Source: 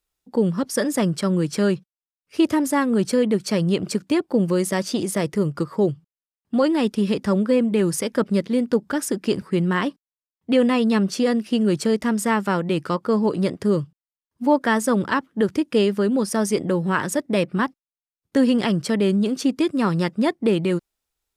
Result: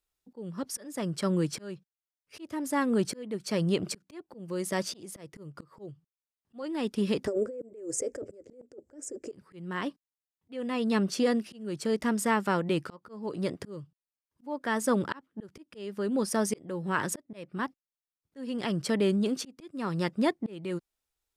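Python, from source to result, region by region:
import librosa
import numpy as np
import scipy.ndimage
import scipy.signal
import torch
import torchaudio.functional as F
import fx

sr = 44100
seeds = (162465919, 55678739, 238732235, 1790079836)

y = fx.chain(x, sr, fx.curve_eq(hz=(110.0, 180.0, 270.0, 520.0, 970.0, 2100.0, 3700.0, 7500.0, 11000.0), db=(0, -24, -1, 7, -17, -12, -24, 4, -19)),
    fx.over_compress(threshold_db=-26.0, ratio=-1.0), at=(7.27, 9.32))
y = fx.peak_eq(y, sr, hz=200.0, db=-2.5, octaves=0.63)
y = fx.auto_swell(y, sr, attack_ms=505.0)
y = y * librosa.db_to_amplitude(-5.0)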